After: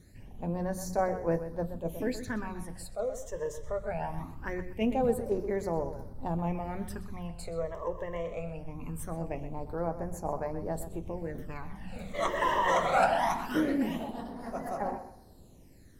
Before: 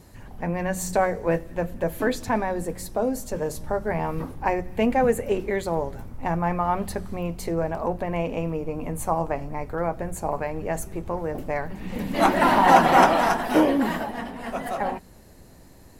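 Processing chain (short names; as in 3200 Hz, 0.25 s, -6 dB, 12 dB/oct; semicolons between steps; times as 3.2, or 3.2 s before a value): phaser stages 12, 0.22 Hz, lowest notch 240–3200 Hz; tape echo 0.126 s, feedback 29%, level -10.5 dB, low-pass 4100 Hz; attack slew limiter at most 290 dB/s; gain -6.5 dB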